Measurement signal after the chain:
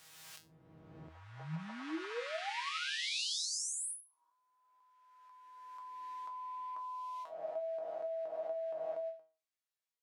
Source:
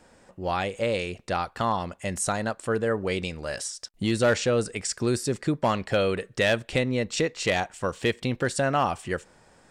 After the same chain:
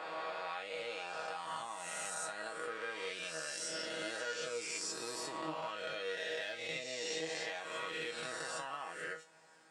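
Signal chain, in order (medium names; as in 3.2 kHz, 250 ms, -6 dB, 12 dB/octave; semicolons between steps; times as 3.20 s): reverse spectral sustain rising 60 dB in 2.19 s; frequency weighting A; compression 6:1, threshold -31 dBFS; dynamic bell 4.2 kHz, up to +3 dB, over -47 dBFS, Q 0.92; feedback comb 160 Hz, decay 0.23 s, harmonics all, mix 90%; endings held to a fixed fall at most 170 dB/s; trim +1.5 dB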